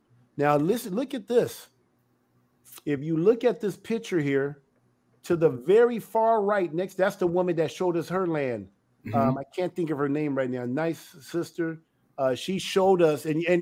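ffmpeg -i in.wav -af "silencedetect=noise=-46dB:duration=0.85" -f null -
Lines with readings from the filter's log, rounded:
silence_start: 1.66
silence_end: 2.66 | silence_duration: 1.00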